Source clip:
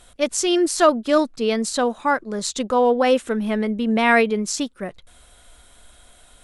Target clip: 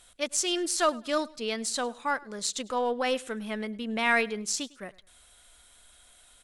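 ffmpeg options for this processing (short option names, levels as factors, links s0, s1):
-af "tiltshelf=f=1100:g=-5,aeval=exprs='0.841*(cos(1*acos(clip(val(0)/0.841,-1,1)))-cos(1*PI/2))+0.00841*(cos(8*acos(clip(val(0)/0.841,-1,1)))-cos(8*PI/2))':c=same,aecho=1:1:103|206:0.075|0.0217,volume=0.376"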